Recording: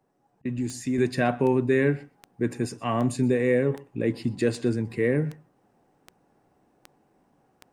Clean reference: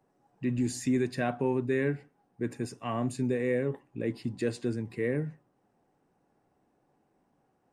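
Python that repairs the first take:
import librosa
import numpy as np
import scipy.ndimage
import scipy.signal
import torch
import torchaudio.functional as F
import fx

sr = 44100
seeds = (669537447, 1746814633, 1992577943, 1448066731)

y = fx.fix_declick_ar(x, sr, threshold=10.0)
y = fx.fix_interpolate(y, sr, at_s=(0.42,), length_ms=30.0)
y = fx.fix_echo_inverse(y, sr, delay_ms=124, level_db=-22.5)
y = fx.fix_level(y, sr, at_s=0.98, step_db=-6.5)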